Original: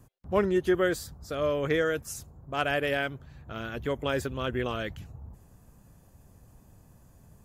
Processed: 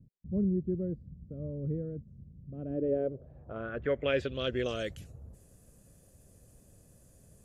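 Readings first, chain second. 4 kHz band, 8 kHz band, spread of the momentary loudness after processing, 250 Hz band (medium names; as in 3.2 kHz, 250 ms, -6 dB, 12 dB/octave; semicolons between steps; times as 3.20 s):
-5.0 dB, under -15 dB, 18 LU, -2.0 dB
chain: FFT filter 290 Hz 0 dB, 560 Hz +3 dB, 910 Hz -17 dB, 1.3 kHz -13 dB; low-pass sweep 190 Hz -> 10 kHz, 2.51–4.97 s; tilt shelf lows -8.5 dB, about 1.1 kHz; trim +4 dB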